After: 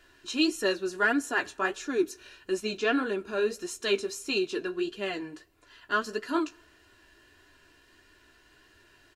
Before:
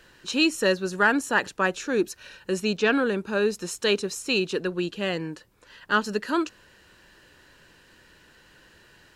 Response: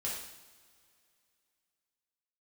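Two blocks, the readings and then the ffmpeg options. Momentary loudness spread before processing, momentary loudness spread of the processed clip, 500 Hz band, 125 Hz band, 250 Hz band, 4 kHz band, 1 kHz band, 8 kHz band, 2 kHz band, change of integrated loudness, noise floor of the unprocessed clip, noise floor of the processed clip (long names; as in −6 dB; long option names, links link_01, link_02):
9 LU, 8 LU, −4.0 dB, −13.0 dB, −4.0 dB, −4.5 dB, −4.5 dB, −4.5 dB, −5.0 dB, −4.5 dB, −57 dBFS, −61 dBFS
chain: -filter_complex "[0:a]aecho=1:1:2.9:0.7,flanger=delay=9.9:depth=7.6:regen=-34:speed=1.6:shape=sinusoidal,asplit=2[link_01][link_02];[1:a]atrim=start_sample=2205[link_03];[link_02][link_03]afir=irnorm=-1:irlink=0,volume=-24dB[link_04];[link_01][link_04]amix=inputs=2:normalize=0,volume=-3dB"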